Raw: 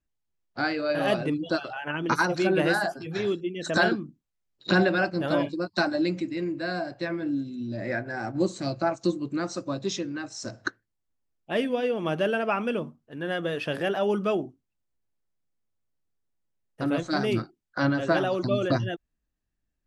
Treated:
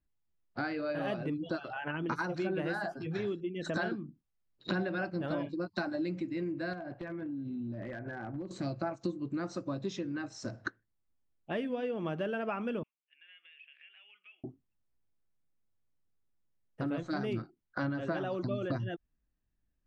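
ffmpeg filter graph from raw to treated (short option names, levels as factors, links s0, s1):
-filter_complex "[0:a]asettb=1/sr,asplit=3[s0][s1][s2];[s0]atrim=end=6.734[s3];[s1]atrim=start=6.73:end=8.51,asetpts=PTS-STARTPTS,afade=t=in:d=0.004:c=qsin,afade=t=out:st=1.776:d=0.004:c=qsin,lowpass=2700,acompressor=threshold=0.02:ratio=20:attack=3.2:release=140:knee=1:detection=peak,aeval=exprs='0.0266*(abs(mod(val(0)/0.0266+3,4)-2)-1)':c=same[s4];[s2]atrim=start=8.506[s5];[s3][s4]acrossfade=d=0.004:c1=hsin:c2=qsin[s6];[s6][s5]acrossfade=d=0.004:c1=qsin:c2=hsin,asettb=1/sr,asplit=3[s7][s8][s9];[s7]atrim=end=12.834[s10];[s8]atrim=start=12.83:end=14.44,asetpts=PTS-STARTPTS,afade=t=in:d=0.004:c=qsin,afade=t=out:st=1.606:d=0.004:c=qsin,asuperpass=centerf=2500:order=4:qfactor=3.5,acompressor=threshold=0.00316:ratio=4:attack=3.2:release=140:knee=1:detection=peak[s11];[s9]atrim=start=14.436[s12];[s10][s11]acrossfade=d=0.004:c1=hsin:c2=qsin[s13];[s13][s12]acrossfade=d=0.004:c1=qsin:c2=hsin,lowpass=f=1600:p=1,equalizer=f=600:w=0.56:g=-3.5,acompressor=threshold=0.0178:ratio=3,volume=1.19"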